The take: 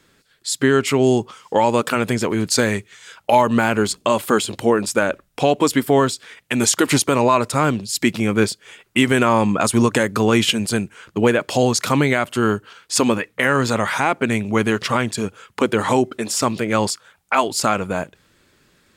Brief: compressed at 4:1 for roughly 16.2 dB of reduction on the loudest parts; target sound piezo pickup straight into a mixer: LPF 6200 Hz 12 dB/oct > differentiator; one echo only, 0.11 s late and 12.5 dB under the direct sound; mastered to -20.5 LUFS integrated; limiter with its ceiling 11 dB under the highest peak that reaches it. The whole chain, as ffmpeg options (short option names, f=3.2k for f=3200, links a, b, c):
-af "acompressor=threshold=-31dB:ratio=4,alimiter=limit=-23.5dB:level=0:latency=1,lowpass=6.2k,aderivative,aecho=1:1:110:0.237,volume=25.5dB"